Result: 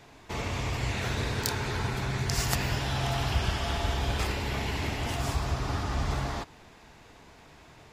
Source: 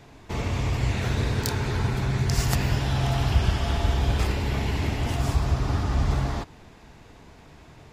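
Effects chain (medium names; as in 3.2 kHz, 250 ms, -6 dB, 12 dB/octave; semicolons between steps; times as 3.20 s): bass shelf 400 Hz -7.5 dB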